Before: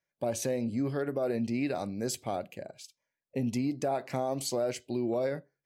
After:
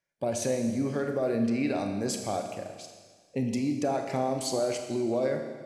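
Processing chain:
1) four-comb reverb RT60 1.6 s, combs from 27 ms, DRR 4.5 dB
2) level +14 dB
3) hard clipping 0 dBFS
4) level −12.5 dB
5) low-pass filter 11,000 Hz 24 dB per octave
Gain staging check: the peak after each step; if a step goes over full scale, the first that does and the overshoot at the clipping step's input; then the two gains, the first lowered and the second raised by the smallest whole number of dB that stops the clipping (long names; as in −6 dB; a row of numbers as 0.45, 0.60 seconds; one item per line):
−17.5, −3.5, −3.5, −16.0, −16.0 dBFS
no step passes full scale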